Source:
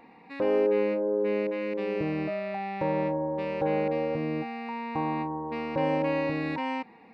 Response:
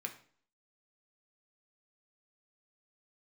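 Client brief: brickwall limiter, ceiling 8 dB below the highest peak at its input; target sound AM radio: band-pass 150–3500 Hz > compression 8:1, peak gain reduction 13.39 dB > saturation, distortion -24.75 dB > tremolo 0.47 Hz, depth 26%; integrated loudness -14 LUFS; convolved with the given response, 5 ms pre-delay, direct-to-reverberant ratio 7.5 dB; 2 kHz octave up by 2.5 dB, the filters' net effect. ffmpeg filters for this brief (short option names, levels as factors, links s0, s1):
-filter_complex "[0:a]equalizer=f=2000:t=o:g=3.5,alimiter=limit=0.0841:level=0:latency=1,asplit=2[s0][s1];[1:a]atrim=start_sample=2205,adelay=5[s2];[s1][s2]afir=irnorm=-1:irlink=0,volume=0.447[s3];[s0][s3]amix=inputs=2:normalize=0,highpass=150,lowpass=3500,acompressor=threshold=0.0126:ratio=8,asoftclip=threshold=0.0282,tremolo=f=0.47:d=0.26,volume=28.2"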